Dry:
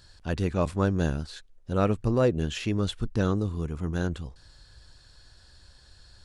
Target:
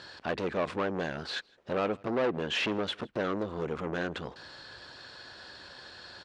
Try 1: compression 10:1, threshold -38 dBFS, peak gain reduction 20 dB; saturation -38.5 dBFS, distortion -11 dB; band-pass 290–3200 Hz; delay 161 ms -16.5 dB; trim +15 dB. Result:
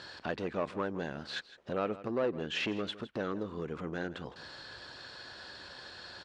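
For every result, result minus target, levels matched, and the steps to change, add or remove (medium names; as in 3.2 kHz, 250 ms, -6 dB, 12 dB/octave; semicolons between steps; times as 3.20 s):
compression: peak gain reduction +8.5 dB; echo-to-direct +11.5 dB
change: compression 10:1, threshold -28.5 dBFS, peak gain reduction 11.5 dB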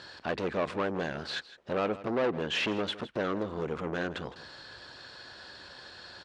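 echo-to-direct +11.5 dB
change: delay 161 ms -28 dB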